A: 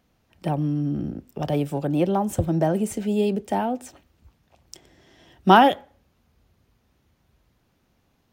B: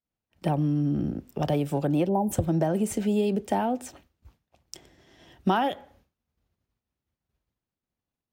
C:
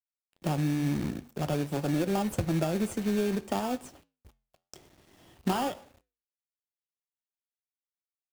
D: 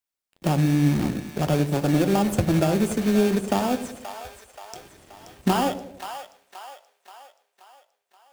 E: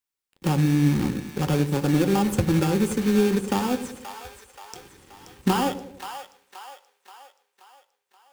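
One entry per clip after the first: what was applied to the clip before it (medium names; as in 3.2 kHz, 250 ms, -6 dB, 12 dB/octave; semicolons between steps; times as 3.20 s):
expander -51 dBFS; time-frequency box 2.08–2.32 s, 1–9.7 kHz -27 dB; compression 12:1, threshold -21 dBFS, peak gain reduction 13 dB; trim +1 dB
companded quantiser 4-bit; flange 1 Hz, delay 8.5 ms, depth 3.7 ms, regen -83%; in parallel at -4 dB: sample-rate reducer 2 kHz, jitter 0%; on the sum: trim -3.5 dB
two-band feedback delay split 600 Hz, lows 95 ms, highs 528 ms, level -10 dB; trim +7 dB
Butterworth band-stop 650 Hz, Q 3.7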